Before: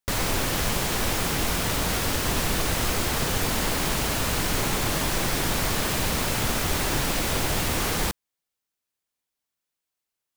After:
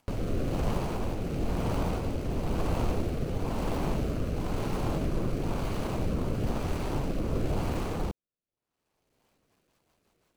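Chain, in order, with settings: median filter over 25 samples; rotary cabinet horn 1 Hz, later 6 Hz, at 8.86 s; upward compressor, threshold -50 dBFS

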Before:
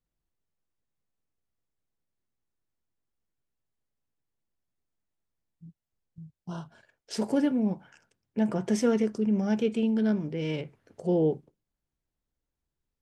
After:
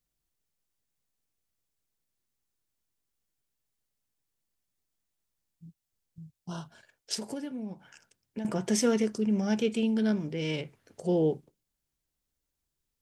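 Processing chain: treble shelf 2.8 kHz +10.5 dB; 7.14–8.45 s: compression 12:1, threshold -32 dBFS, peak gain reduction 12.5 dB; trim -1.5 dB

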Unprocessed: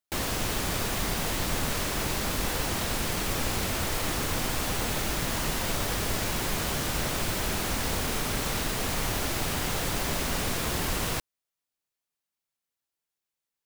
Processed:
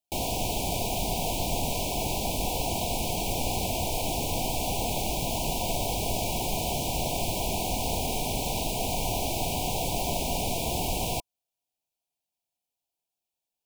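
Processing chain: Chebyshev band-stop 990–2300 Hz, order 5; peaking EQ 710 Hz +9.5 dB 0.34 oct

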